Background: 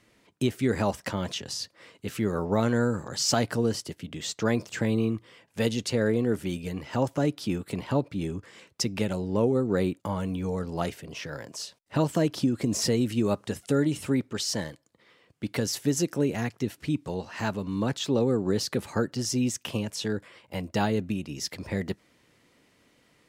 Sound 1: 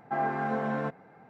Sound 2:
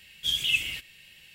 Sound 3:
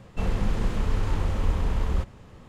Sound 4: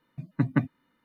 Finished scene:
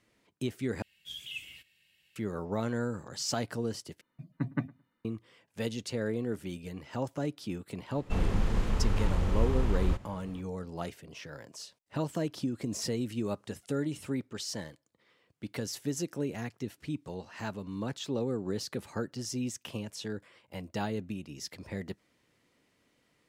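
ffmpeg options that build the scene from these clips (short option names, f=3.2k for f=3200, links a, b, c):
-filter_complex "[0:a]volume=-8dB[a];[2:a]highpass=62[b];[4:a]asplit=2[c][d];[d]adelay=109,lowpass=f=1.7k:p=1,volume=-23dB,asplit=2[e][f];[f]adelay=109,lowpass=f=1.7k:p=1,volume=0.2[g];[c][e][g]amix=inputs=3:normalize=0[h];[a]asplit=3[i][j][k];[i]atrim=end=0.824[l];[b]atrim=end=1.34,asetpts=PTS-STARTPTS,volume=-16dB[m];[j]atrim=start=2.156:end=4.014[n];[h]atrim=end=1.04,asetpts=PTS-STARTPTS,volume=-8dB[o];[k]atrim=start=5.046[p];[3:a]atrim=end=2.48,asetpts=PTS-STARTPTS,volume=-3dB,afade=t=in:d=0.004:c=hsin,afade=t=out:st=2.476:d=0.004:c=hsin,adelay=7930[q];[l][m]acrossfade=d=0.004:c1=hsin:c2=hsin[r];[r][n]acrossfade=d=0.004:c1=hsin:c2=hsin[s];[s][o]acrossfade=d=0.004:c1=hsin:c2=hsin[t];[t][p]acrossfade=d=0.004:c1=hsin:c2=hsin[u];[u][q]amix=inputs=2:normalize=0"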